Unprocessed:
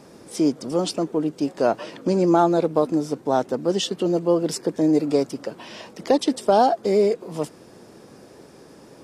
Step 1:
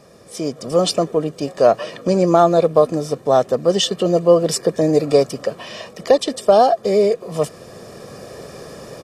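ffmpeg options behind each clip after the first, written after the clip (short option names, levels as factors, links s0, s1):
-af "aecho=1:1:1.7:0.58,dynaudnorm=f=450:g=3:m=4.22,volume=0.891"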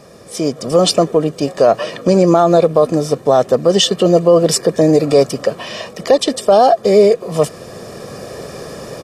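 -af "alimiter=level_in=2.24:limit=0.891:release=50:level=0:latency=1,volume=0.891"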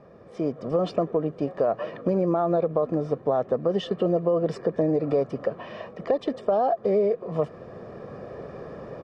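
-af "lowpass=1600,acompressor=threshold=0.282:ratio=4,volume=0.376"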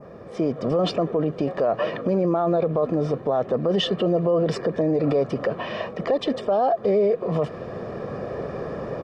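-af "adynamicequalizer=threshold=0.00501:dfrequency=3400:dqfactor=0.9:tfrequency=3400:tqfactor=0.9:attack=5:release=100:ratio=0.375:range=2:mode=boostabove:tftype=bell,alimiter=limit=0.0794:level=0:latency=1:release=21,volume=2.51"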